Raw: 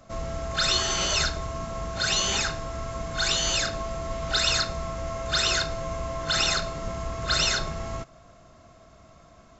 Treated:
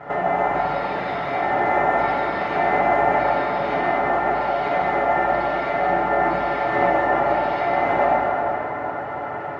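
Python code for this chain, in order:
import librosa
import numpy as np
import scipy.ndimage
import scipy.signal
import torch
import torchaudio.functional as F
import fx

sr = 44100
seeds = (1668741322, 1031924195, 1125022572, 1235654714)

y = fx.over_compress(x, sr, threshold_db=-36.0, ratio=-1.0)
y = y + 0.71 * np.pad(y, (int(6.8 * sr / 1000.0), 0))[:len(y)]
y = np.repeat(y[::6], 6)[:len(y)]
y = scipy.signal.sosfilt(scipy.signal.butter(2, 1300.0, 'lowpass', fs=sr, output='sos'), y)
y = y * np.sin(2.0 * np.pi * 720.0 * np.arange(len(y)) / sr)
y = scipy.signal.sosfilt(scipy.signal.butter(2, 120.0, 'highpass', fs=sr, output='sos'), y)
y = fx.rev_plate(y, sr, seeds[0], rt60_s=4.3, hf_ratio=0.55, predelay_ms=0, drr_db=-9.0)
y = y * librosa.db_to_amplitude(8.5)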